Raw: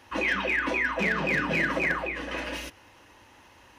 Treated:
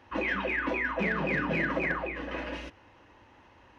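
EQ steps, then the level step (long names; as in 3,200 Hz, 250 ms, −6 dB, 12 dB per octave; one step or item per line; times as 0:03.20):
head-to-tape spacing loss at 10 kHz 23 dB
0.0 dB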